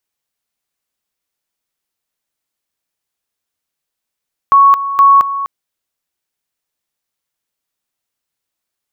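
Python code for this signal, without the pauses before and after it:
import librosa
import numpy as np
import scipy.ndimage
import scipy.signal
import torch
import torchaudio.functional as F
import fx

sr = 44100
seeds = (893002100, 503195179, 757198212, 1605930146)

y = fx.two_level_tone(sr, hz=1110.0, level_db=-3.5, drop_db=12.5, high_s=0.22, low_s=0.25, rounds=2)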